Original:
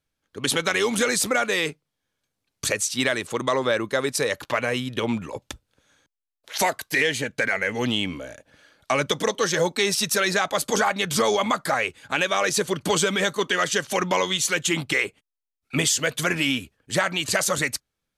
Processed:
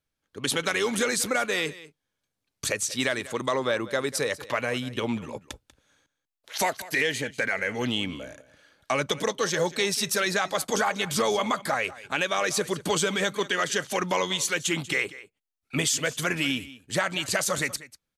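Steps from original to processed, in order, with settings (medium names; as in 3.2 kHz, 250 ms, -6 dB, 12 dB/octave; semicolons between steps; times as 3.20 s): delay 191 ms -17.5 dB; trim -3.5 dB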